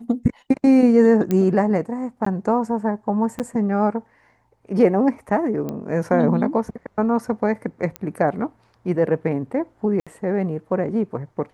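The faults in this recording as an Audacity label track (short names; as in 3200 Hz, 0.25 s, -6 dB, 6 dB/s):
1.310000	1.310000	pop -10 dBFS
2.250000	2.260000	gap 14 ms
3.390000	3.400000	gap 8.1 ms
5.690000	5.690000	pop -16 dBFS
7.960000	7.960000	pop -14 dBFS
10.000000	10.070000	gap 66 ms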